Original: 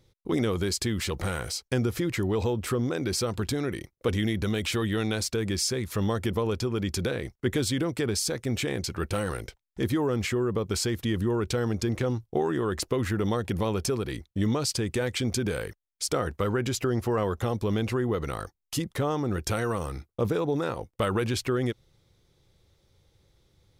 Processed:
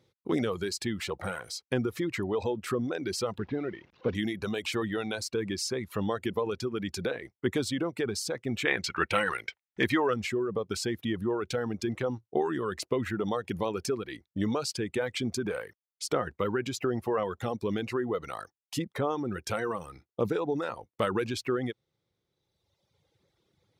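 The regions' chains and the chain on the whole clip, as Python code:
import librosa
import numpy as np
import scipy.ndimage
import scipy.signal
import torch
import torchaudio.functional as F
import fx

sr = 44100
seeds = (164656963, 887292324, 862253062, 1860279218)

y = fx.chain(x, sr, fx.delta_mod(bps=32000, step_db=-42.0),
    fx.lowpass(hz=2400.0, slope=6), at=(3.38, 4.15))
y = fx.chain(y, sr, fx.peak_eq(hz=2100.0, db=14.0, octaves=1.8),
    fx.quant_float(bits=6), at=(8.65, 10.14))
y = fx.dereverb_blind(y, sr, rt60_s=1.6)
y = scipy.signal.sosfilt(scipy.signal.bessel(2, 170.0, 'highpass', norm='mag', fs=sr, output='sos'), y)
y = fx.high_shelf(y, sr, hz=5000.0, db=-9.0)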